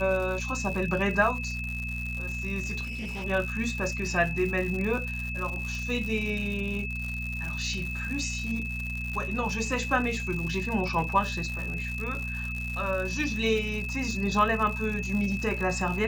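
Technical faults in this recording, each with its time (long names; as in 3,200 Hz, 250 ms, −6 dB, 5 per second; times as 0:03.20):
surface crackle 160 per second −33 dBFS
mains hum 60 Hz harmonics 4 −35 dBFS
whistle 2,600 Hz −34 dBFS
0:02.83–0:03.25: clipping −31.5 dBFS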